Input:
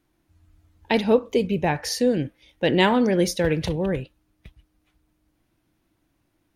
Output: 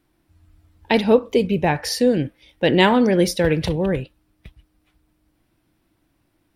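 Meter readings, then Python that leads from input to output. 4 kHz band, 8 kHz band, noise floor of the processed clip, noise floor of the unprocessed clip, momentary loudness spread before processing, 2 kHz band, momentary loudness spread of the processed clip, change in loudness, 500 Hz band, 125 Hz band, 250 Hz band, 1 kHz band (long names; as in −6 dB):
+3.5 dB, +1.0 dB, −68 dBFS, −71 dBFS, 8 LU, +3.5 dB, 8 LU, +3.5 dB, +3.5 dB, +3.5 dB, +3.5 dB, +3.5 dB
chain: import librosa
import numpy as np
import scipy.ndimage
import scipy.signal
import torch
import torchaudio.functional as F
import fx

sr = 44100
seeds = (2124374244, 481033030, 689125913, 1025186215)

y = fx.notch(x, sr, hz=6500.0, q=8.9)
y = F.gain(torch.from_numpy(y), 3.5).numpy()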